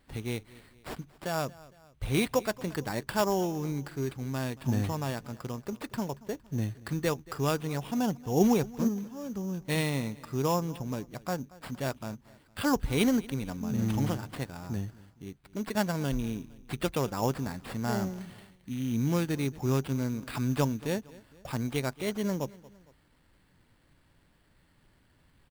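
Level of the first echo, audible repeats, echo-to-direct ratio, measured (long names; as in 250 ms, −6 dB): −21.0 dB, 2, −20.0 dB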